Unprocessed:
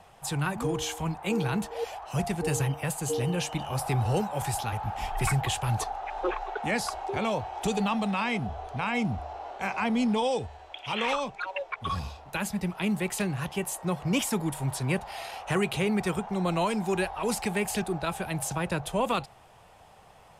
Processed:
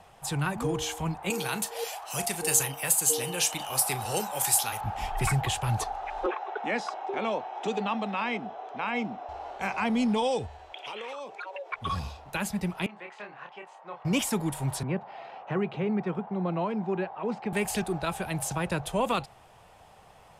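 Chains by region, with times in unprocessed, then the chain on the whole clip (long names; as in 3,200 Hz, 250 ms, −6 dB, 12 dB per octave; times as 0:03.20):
0:01.30–0:04.81: RIAA equalisation recording + double-tracking delay 37 ms −14 dB
0:06.26–0:09.29: high-pass filter 230 Hz 24 dB per octave + high-frequency loss of the air 130 metres + notch filter 4,500 Hz
0:10.73–0:11.72: high-pass with resonance 400 Hz, resonance Q 2.1 + downward compressor 16 to 1, threshold −34 dBFS
0:12.86–0:14.05: high-pass filter 850 Hz + head-to-tape spacing loss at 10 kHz 43 dB + double-tracking delay 29 ms −5 dB
0:14.83–0:17.53: high-pass filter 140 Hz 24 dB per octave + head-to-tape spacing loss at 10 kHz 41 dB
whole clip: no processing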